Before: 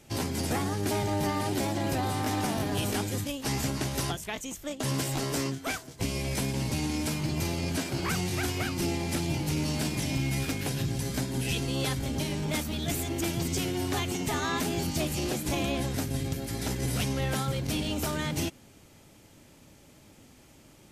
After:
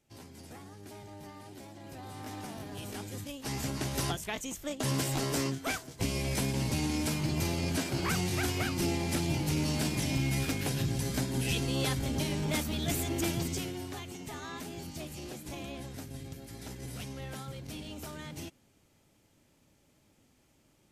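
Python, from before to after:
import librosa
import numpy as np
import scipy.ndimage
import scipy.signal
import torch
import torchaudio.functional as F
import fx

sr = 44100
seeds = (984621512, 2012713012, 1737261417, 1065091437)

y = fx.gain(x, sr, db=fx.line((1.79, -19.0), (2.26, -12.5), (2.76, -12.5), (4.08, -1.0), (13.31, -1.0), (13.99, -12.0)))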